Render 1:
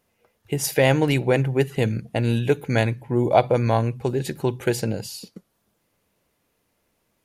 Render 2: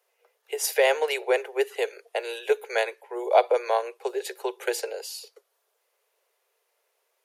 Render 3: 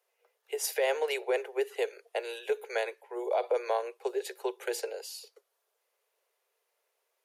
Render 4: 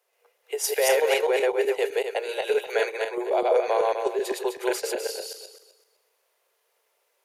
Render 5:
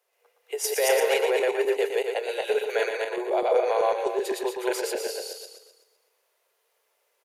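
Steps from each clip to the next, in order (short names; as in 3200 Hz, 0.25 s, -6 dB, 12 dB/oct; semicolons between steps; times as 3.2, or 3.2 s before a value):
steep high-pass 390 Hz 96 dB/oct; gain -1.5 dB
dynamic EQ 400 Hz, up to +3 dB, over -31 dBFS, Q 1.1; limiter -14 dBFS, peak gain reduction 9 dB; gain -5.5 dB
regenerating reverse delay 0.127 s, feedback 45%, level 0 dB; gain +4.5 dB
echo 0.117 s -6.5 dB; gain -1.5 dB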